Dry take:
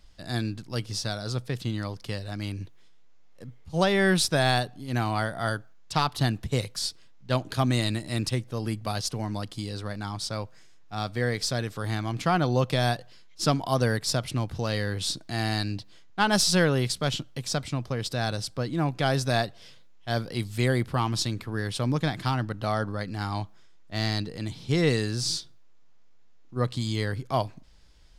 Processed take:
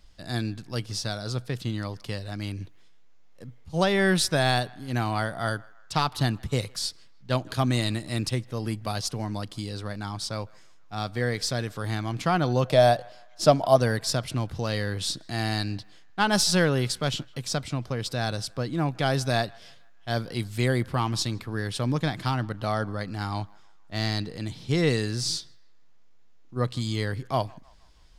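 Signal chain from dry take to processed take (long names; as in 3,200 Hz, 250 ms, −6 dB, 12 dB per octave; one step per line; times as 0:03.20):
0:12.65–0:13.76: parametric band 620 Hz +13.5 dB 0.49 octaves
feedback echo with a band-pass in the loop 158 ms, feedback 54%, band-pass 1,400 Hz, level −23.5 dB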